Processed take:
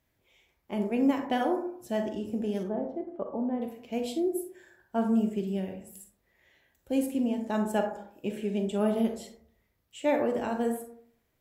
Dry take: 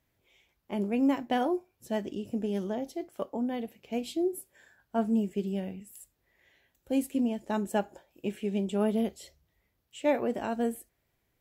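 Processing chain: 2.63–3.62 s: low-pass 1.1 kHz 12 dB/octave; reverberation RT60 0.60 s, pre-delay 32 ms, DRR 4.5 dB

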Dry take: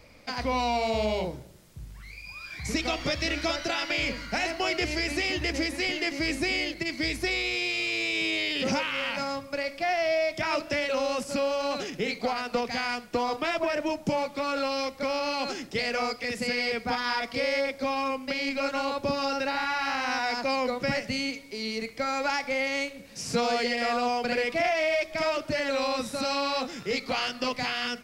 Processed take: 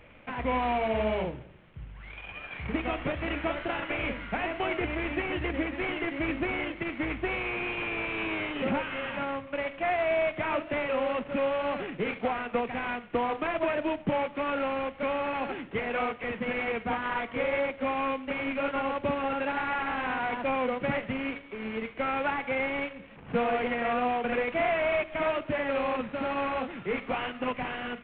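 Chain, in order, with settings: CVSD coder 16 kbps; wow and flutter 18 cents

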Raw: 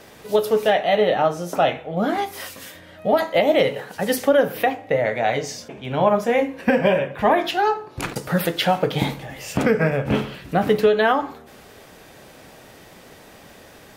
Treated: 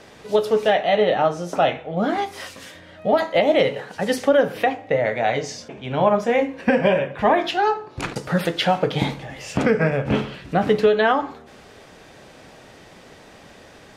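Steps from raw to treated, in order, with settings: low-pass 7.5 kHz 12 dB/octave

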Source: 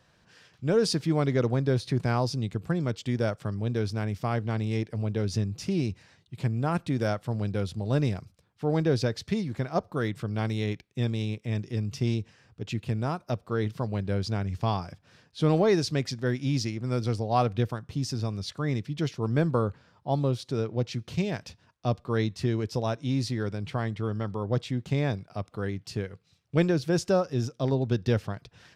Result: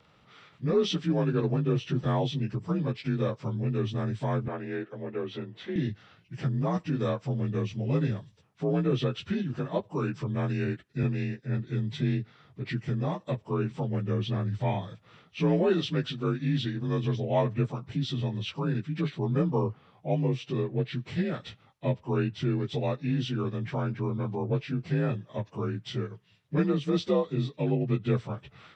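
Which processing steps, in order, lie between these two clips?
frequency axis rescaled in octaves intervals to 87%; 4.48–5.76 s: three-band isolator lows -19 dB, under 300 Hz, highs -17 dB, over 2.7 kHz; in parallel at +2 dB: compression, threshold -36 dBFS, peak gain reduction 16 dB; 11.03–11.67 s: on the sum: three bands expanded up and down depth 100%; trim -2.5 dB

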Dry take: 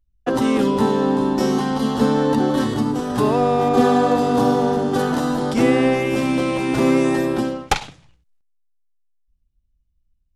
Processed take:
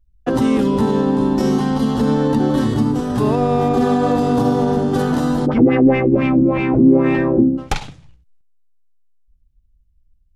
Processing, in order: bass shelf 230 Hz +10.5 dB; peak limiter -6.5 dBFS, peak gain reduction 6.5 dB; 5.45–7.57 s: LFO low-pass sine 6 Hz -> 1.1 Hz 260–2600 Hz; trim -1 dB

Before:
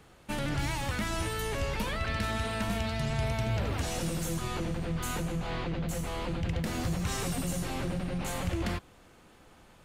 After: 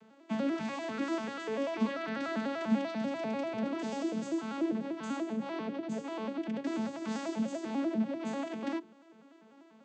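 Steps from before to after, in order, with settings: vocoder on a broken chord major triad, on A3, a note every 98 ms; hum notches 50/100/150/200/250/300/350/400/450 Hz

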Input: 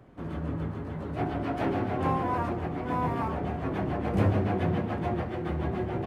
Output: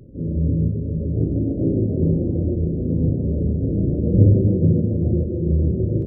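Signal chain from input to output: Chebyshev low-pass 560 Hz, order 6; tilt EQ -2.5 dB/octave; reverse echo 37 ms -4 dB; trim +3.5 dB

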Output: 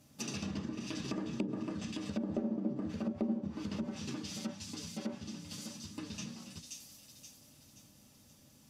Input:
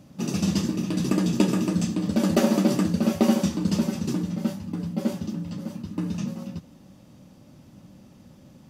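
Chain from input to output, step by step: bass shelf 64 Hz +3 dB; hum notches 60/120/180/240/300 Hz; comb of notches 180 Hz; feedback echo behind a high-pass 526 ms, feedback 49%, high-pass 3.2 kHz, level -3.5 dB; low-pass that closes with the level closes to 410 Hz, closed at -19 dBFS; pre-emphasis filter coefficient 0.9; tape noise reduction on one side only decoder only; trim +7.5 dB

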